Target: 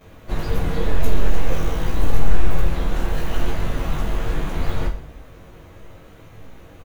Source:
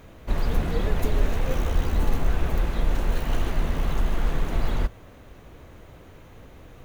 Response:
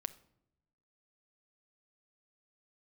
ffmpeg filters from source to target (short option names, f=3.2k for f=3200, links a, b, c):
-filter_complex "[0:a]flanger=delay=1.6:depth=4.1:regen=-66:speed=1.9:shape=sinusoidal,aecho=1:1:20|46|79.8|123.7|180.9:0.631|0.398|0.251|0.158|0.1,asplit=2[a][b];[1:a]atrim=start_sample=2205,adelay=11[c];[b][c]afir=irnorm=-1:irlink=0,volume=11dB[d];[a][d]amix=inputs=2:normalize=0,volume=-4.5dB"